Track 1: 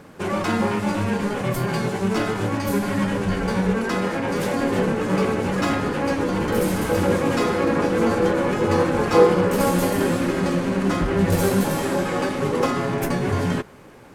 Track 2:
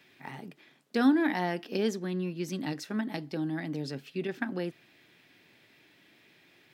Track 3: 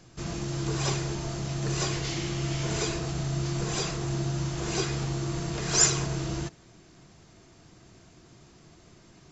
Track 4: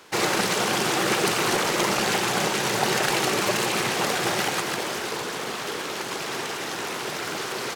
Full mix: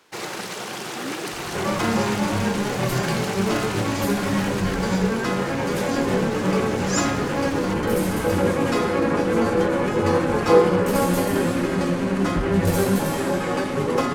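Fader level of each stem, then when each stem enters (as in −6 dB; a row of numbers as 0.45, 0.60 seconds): −0.5, −11.5, −6.5, −8.0 decibels; 1.35, 0.00, 1.15, 0.00 seconds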